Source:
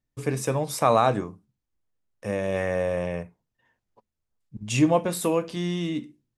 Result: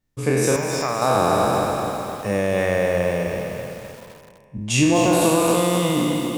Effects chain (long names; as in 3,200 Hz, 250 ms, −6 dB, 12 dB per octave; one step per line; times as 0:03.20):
peak hold with a decay on every bin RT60 2.72 s
downward compressor, threshold −18 dBFS, peak gain reduction 7.5 dB
0:00.56–0:01.02: Chebyshev low-pass with heavy ripple 7,300 Hz, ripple 9 dB
feedback echo at a low word length 255 ms, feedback 55%, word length 7 bits, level −7 dB
level +4.5 dB